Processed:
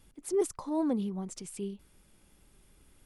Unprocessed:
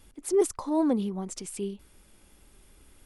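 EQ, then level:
parametric band 150 Hz +6.5 dB 0.71 octaves
−5.5 dB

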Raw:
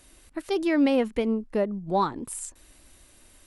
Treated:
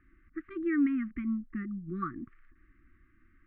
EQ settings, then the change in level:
linear-phase brick-wall band-stop 370–1,100 Hz
elliptic low-pass filter 2,000 Hz, stop band 70 dB
−4.0 dB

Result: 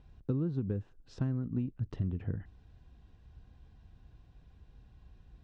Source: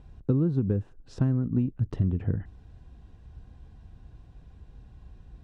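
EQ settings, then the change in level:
high-frequency loss of the air 95 metres
high-shelf EQ 2,000 Hz +9 dB
−8.0 dB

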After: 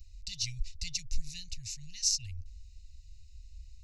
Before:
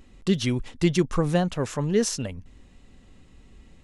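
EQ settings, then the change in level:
inverse Chebyshev band-stop filter 230–1,200 Hz, stop band 60 dB
phaser with its sweep stopped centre 2,200 Hz, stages 8
+3.5 dB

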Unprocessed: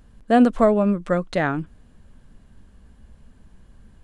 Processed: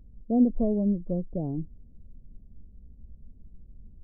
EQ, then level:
Gaussian smoothing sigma 18 samples
low-shelf EQ 65 Hz +7.5 dB
−4.0 dB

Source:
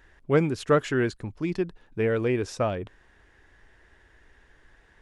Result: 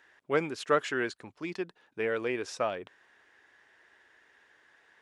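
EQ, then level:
meter weighting curve A
−2.0 dB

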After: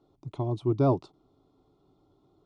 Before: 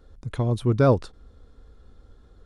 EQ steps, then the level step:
band-pass filter 230–6,100 Hz
spectral tilt −2.5 dB per octave
phaser with its sweep stopped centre 330 Hz, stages 8
−2.5 dB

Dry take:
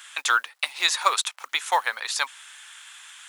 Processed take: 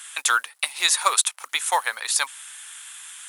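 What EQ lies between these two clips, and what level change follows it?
parametric band 10,000 Hz +14 dB 0.72 octaves
0.0 dB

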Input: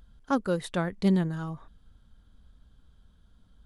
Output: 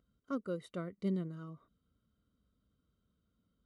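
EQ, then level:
moving average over 52 samples
high-pass filter 58 Hz
spectral tilt +4.5 dB per octave
0.0 dB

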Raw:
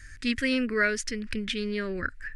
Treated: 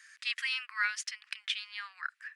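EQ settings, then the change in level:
Chebyshev high-pass with heavy ripple 800 Hz, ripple 6 dB
0.0 dB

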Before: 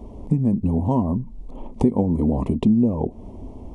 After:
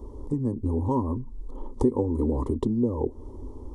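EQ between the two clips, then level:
phaser with its sweep stopped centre 680 Hz, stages 6
0.0 dB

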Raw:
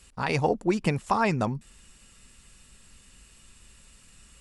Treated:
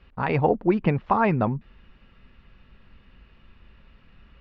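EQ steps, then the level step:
Gaussian smoothing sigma 3.2 samples
+4.0 dB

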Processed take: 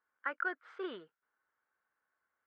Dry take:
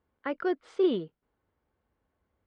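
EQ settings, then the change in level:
resonant band-pass 1,500 Hz, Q 3.6
+6.0 dB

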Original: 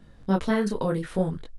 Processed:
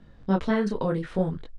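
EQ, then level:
high-frequency loss of the air 92 metres
0.0 dB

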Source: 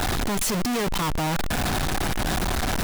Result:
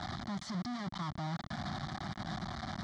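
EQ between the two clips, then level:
loudspeaker in its box 150–4,200 Hz, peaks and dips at 280 Hz −7 dB, 460 Hz −8 dB, 940 Hz −8 dB, 1,500 Hz −9 dB
parametric band 870 Hz −2.5 dB 2.1 octaves
phaser with its sweep stopped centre 1,100 Hz, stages 4
−5.0 dB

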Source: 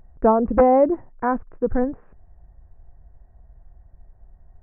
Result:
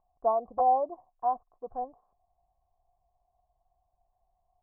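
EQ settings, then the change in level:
dynamic equaliser 510 Hz, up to +5 dB, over −29 dBFS, Q 1.3
formant resonators in series a
−2.0 dB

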